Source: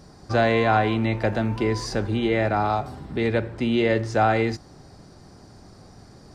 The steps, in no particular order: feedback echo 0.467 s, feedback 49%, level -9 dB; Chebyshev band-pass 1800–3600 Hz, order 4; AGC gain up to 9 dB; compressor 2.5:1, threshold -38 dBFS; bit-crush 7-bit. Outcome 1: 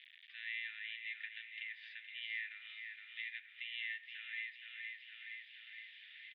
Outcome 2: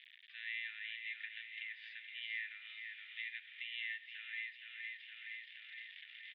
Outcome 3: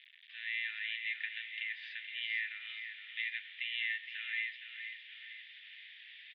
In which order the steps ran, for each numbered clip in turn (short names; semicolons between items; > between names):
AGC > bit-crush > feedback echo > compressor > Chebyshev band-pass; bit-crush > feedback echo > AGC > compressor > Chebyshev band-pass; compressor > feedback echo > AGC > bit-crush > Chebyshev band-pass